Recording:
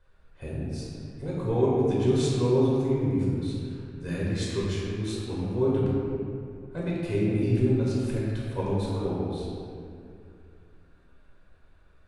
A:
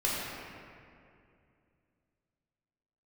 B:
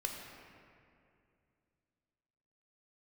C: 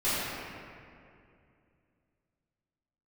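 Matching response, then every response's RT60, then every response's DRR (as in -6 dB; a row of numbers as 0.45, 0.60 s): A; 2.4, 2.4, 2.4 s; -7.0, 1.0, -15.0 dB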